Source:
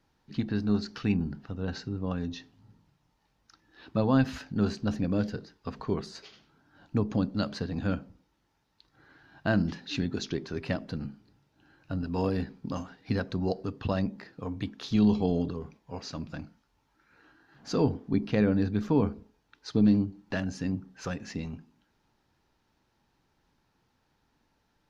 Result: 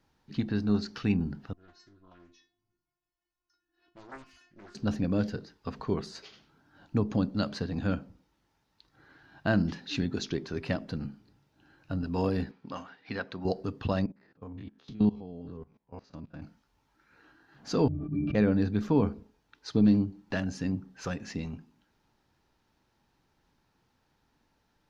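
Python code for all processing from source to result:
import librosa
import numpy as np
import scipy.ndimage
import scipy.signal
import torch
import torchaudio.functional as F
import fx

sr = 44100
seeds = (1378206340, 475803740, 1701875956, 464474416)

y = fx.chain(x, sr, fx.peak_eq(hz=3700.0, db=-6.5, octaves=0.35),
    fx.stiff_resonator(f0_hz=350.0, decay_s=0.34, stiffness=0.002),
    fx.doppler_dist(depth_ms=0.67), at=(1.53, 4.75))
y = fx.chain(y, sr, fx.lowpass(hz=2300.0, slope=12),
    fx.tilt_eq(slope=4.0), at=(12.51, 13.45))
y = fx.chain(y, sr, fx.spec_steps(hold_ms=50),
    fx.lowpass(hz=2100.0, slope=6),
    fx.level_steps(step_db=21), at=(14.06, 16.42))
y = fx.chain(y, sr, fx.low_shelf(hz=150.0, db=9.5),
    fx.octave_resonator(note='D', decay_s=0.14),
    fx.sustainer(db_per_s=22.0), at=(17.88, 18.35))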